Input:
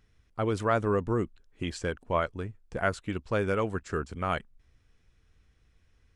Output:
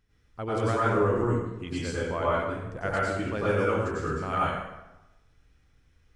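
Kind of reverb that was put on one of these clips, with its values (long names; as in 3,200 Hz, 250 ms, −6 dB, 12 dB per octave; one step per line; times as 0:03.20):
dense smooth reverb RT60 0.99 s, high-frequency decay 0.75×, pre-delay 85 ms, DRR −8 dB
level −6 dB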